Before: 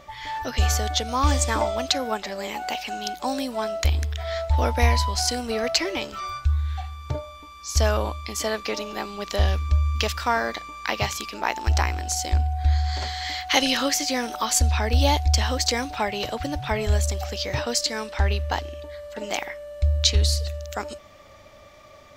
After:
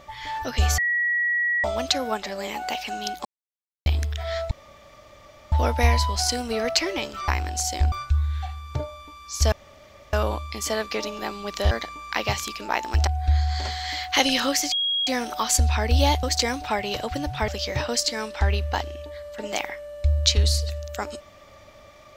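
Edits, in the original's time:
0.78–1.64 s: bleep 1.92 kHz -20 dBFS
3.25–3.86 s: mute
4.51 s: insert room tone 1.01 s
7.87 s: insert room tone 0.61 s
9.45–10.44 s: delete
11.80–12.44 s: move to 6.27 s
14.09 s: add tone 3.29 kHz -21 dBFS 0.35 s
15.25–15.52 s: delete
16.77–17.26 s: delete

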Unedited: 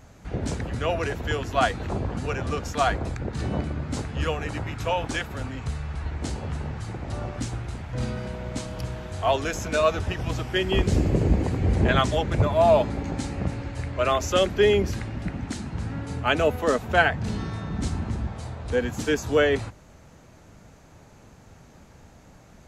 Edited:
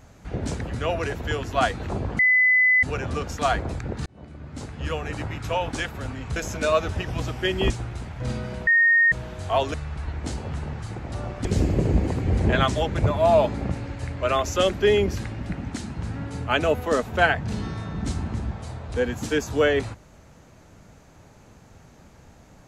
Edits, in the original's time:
2.19 s: add tone 2.01 kHz -14.5 dBFS 0.64 s
3.42–4.51 s: fade in
5.72–7.43 s: swap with 9.47–10.81 s
8.40–8.85 s: bleep 1.85 kHz -14 dBFS
13.01–13.41 s: delete

